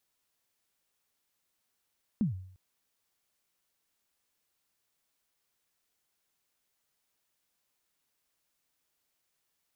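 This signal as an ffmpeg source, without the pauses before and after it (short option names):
-f lavfi -i "aevalsrc='0.0794*pow(10,-3*t/0.62)*sin(2*PI*(240*0.127/log(93/240)*(exp(log(93/240)*min(t,0.127)/0.127)-1)+93*max(t-0.127,0)))':d=0.35:s=44100"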